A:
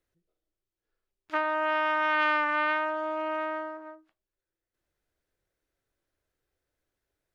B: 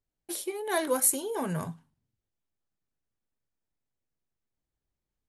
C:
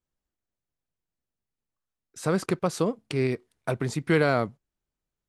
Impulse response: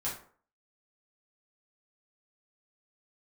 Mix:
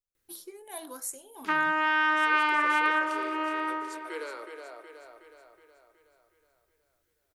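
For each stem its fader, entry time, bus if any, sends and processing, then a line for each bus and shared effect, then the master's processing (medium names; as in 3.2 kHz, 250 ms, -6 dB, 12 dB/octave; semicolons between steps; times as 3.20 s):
+2.5 dB, 0.15 s, bus A, send -12.5 dB, echo send -16 dB, none
-15.0 dB, 0.00 s, no bus, no send, no echo send, drifting ripple filter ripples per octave 0.54, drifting +1.8 Hz, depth 11 dB; gain riding within 4 dB 2 s; random-step tremolo
-13.5 dB, 0.00 s, bus A, no send, echo send -7.5 dB, steep high-pass 350 Hz 48 dB/octave
bus A: 0.0 dB, Butterworth band-stop 680 Hz, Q 3; peak limiter -17.5 dBFS, peak gain reduction 5 dB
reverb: on, RT60 0.50 s, pre-delay 3 ms
echo: feedback delay 369 ms, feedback 54%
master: treble shelf 7.7 kHz +9.5 dB; de-hum 54.99 Hz, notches 33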